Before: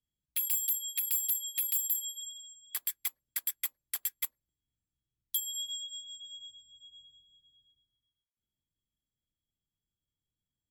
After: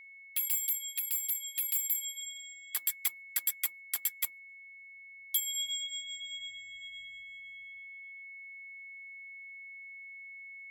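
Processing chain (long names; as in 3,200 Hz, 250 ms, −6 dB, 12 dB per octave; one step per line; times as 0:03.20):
steady tone 2,200 Hz −50 dBFS
speech leveller within 5 dB 2 s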